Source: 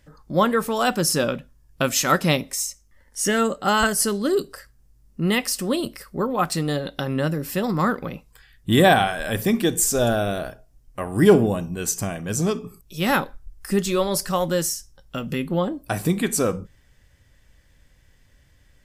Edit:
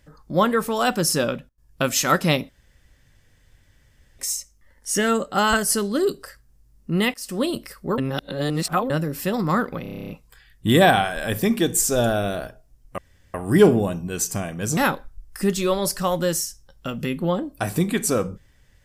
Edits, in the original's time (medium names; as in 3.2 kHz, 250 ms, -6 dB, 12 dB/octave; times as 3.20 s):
1.09–1.98 s: dip -22.5 dB, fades 0.40 s logarithmic
2.49 s: insert room tone 1.70 s
5.44–5.71 s: fade in, from -23 dB
6.28–7.20 s: reverse
8.12 s: stutter 0.03 s, 10 plays
11.01 s: insert room tone 0.36 s
12.44–13.06 s: delete